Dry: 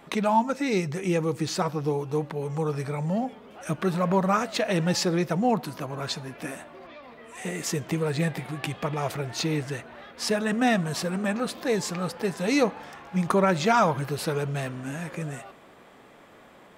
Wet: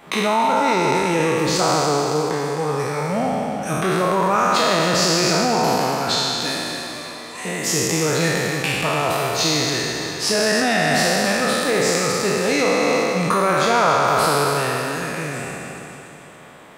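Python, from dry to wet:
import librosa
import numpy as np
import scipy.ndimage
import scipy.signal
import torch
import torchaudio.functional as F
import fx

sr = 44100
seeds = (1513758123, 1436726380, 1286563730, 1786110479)

p1 = fx.spec_trails(x, sr, decay_s=2.91)
p2 = fx.over_compress(p1, sr, threshold_db=-21.0, ratio=-0.5)
p3 = p1 + (p2 * 10.0 ** (-1.0 / 20.0))
p4 = fx.quant_float(p3, sr, bits=8)
p5 = fx.low_shelf(p4, sr, hz=390.0, db=-5.5)
p6 = p5 + fx.echo_feedback(p5, sr, ms=282, feedback_pct=55, wet_db=-12, dry=0)
y = p6 * 10.0 ** (-1.0 / 20.0)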